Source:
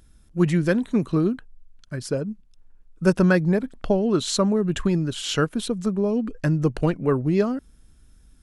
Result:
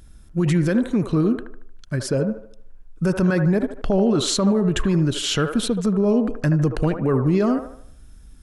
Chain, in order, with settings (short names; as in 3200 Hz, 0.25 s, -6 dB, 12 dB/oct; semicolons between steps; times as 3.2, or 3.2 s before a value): limiter -17.5 dBFS, peak gain reduction 11.5 dB; low shelf 150 Hz +3.5 dB; band-limited delay 76 ms, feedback 42%, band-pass 830 Hz, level -5 dB; gain +5 dB